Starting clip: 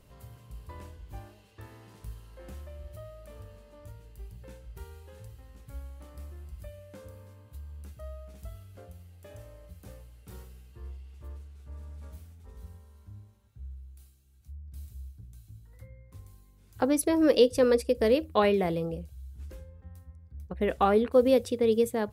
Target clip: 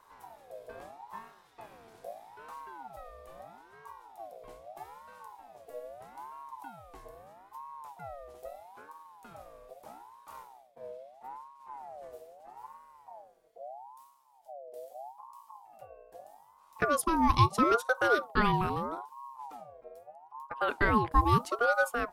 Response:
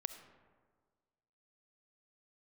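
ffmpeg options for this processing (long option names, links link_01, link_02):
-filter_complex "[0:a]asplit=3[link_01][link_02][link_03];[link_01]afade=type=out:start_time=10.32:duration=0.02[link_04];[link_02]agate=range=-33dB:threshold=-44dB:ratio=3:detection=peak,afade=type=in:start_time=10.32:duration=0.02,afade=type=out:start_time=11.6:duration=0.02[link_05];[link_03]afade=type=in:start_time=11.6:duration=0.02[link_06];[link_04][link_05][link_06]amix=inputs=3:normalize=0,aeval=exprs='val(0)*sin(2*PI*790*n/s+790*0.3/0.78*sin(2*PI*0.78*n/s))':channel_layout=same"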